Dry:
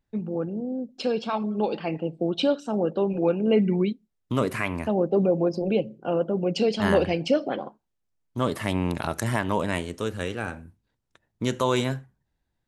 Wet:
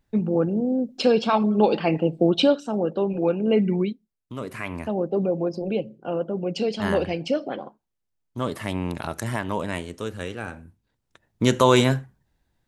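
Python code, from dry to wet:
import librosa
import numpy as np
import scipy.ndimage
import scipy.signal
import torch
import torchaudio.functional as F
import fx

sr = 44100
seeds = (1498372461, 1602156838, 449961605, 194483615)

y = fx.gain(x, sr, db=fx.line((2.3, 7.0), (2.73, 0.5), (3.79, 0.5), (4.35, -10.0), (4.75, -2.0), (10.5, -2.0), (11.49, 7.0)))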